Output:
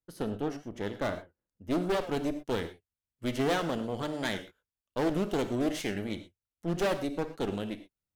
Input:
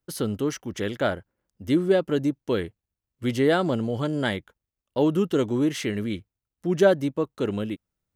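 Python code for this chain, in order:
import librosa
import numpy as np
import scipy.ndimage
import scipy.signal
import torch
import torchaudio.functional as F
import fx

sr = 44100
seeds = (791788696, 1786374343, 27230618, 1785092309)

y = fx.high_shelf(x, sr, hz=2300.0, db=fx.steps((0.0, -7.5), (1.72, 3.0)))
y = fx.cheby_harmonics(y, sr, harmonics=(2, 5, 7), levels_db=(-7, -26, -23), full_scale_db=-17.5)
y = fx.rev_gated(y, sr, seeds[0], gate_ms=140, shape='flat', drr_db=9.0)
y = fx.record_warp(y, sr, rpm=78.0, depth_cents=100.0)
y = y * librosa.db_to_amplitude(-8.5)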